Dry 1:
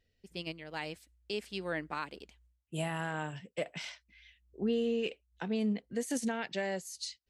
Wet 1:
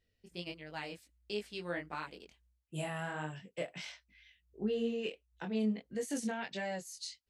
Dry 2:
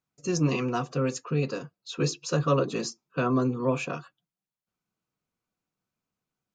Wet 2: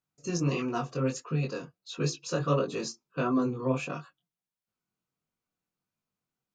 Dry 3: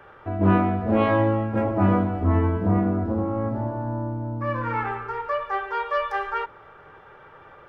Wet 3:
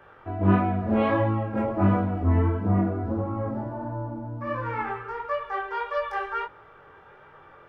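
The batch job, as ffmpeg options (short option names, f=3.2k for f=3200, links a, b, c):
-af "flanger=delay=19:depth=4.3:speed=1.5"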